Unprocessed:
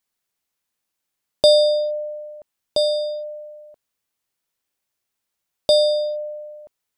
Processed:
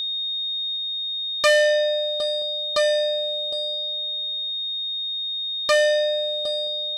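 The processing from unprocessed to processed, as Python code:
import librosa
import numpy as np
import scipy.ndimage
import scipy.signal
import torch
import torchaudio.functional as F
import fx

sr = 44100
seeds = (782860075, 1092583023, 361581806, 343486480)

p1 = x + 10.0 ** (-26.0 / 20.0) * np.sin(2.0 * np.pi * 3700.0 * np.arange(len(x)) / sr)
p2 = p1 + fx.echo_single(p1, sr, ms=762, db=-16.5, dry=0)
p3 = fx.transformer_sat(p2, sr, knee_hz=2400.0)
y = p3 * librosa.db_to_amplitude(2.0)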